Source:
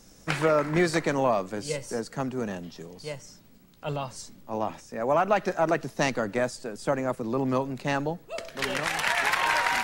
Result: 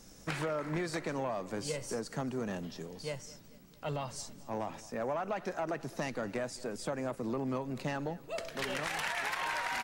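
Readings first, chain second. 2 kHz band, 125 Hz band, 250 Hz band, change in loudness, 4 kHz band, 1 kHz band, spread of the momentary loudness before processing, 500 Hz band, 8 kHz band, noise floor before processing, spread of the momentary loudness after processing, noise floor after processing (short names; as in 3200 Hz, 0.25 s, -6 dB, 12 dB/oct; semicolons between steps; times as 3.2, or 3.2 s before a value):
-10.0 dB, -7.0 dB, -8.0 dB, -9.5 dB, -8.0 dB, -10.0 dB, 15 LU, -9.5 dB, -6.5 dB, -54 dBFS, 8 LU, -55 dBFS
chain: compressor 6:1, threshold -29 dBFS, peak gain reduction 11 dB; soft clip -24.5 dBFS, distortion -18 dB; feedback echo 0.22 s, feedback 56%, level -20.5 dB; gain -1.5 dB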